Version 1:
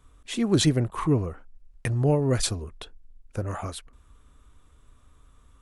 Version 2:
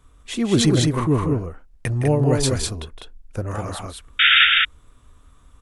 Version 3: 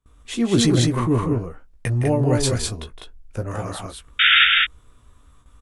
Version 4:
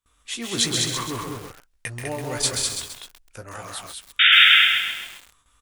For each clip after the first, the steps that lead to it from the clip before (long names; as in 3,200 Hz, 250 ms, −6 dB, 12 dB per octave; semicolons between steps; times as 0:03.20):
sound drawn into the spectrogram noise, 0:04.19–0:04.45, 1,300–3,700 Hz −17 dBFS; on a send: loudspeakers that aren't time-aligned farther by 56 metres −10 dB, 69 metres −3 dB; on the sum: level +3 dB
noise gate with hold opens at −42 dBFS; double-tracking delay 17 ms −7.5 dB; level −1 dB
tilt shelving filter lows −9 dB, about 800 Hz; feedback echo at a low word length 132 ms, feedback 55%, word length 5 bits, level −4.5 dB; level −6.5 dB